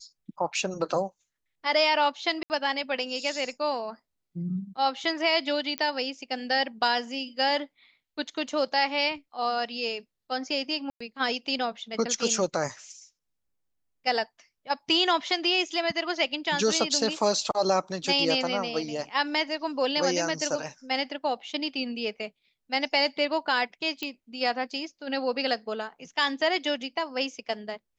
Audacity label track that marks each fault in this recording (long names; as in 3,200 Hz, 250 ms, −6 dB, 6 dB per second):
2.430000	2.500000	drop-out 69 ms
5.780000	5.780000	click −15 dBFS
10.900000	11.010000	drop-out 105 ms
24.030000	24.030000	click −17 dBFS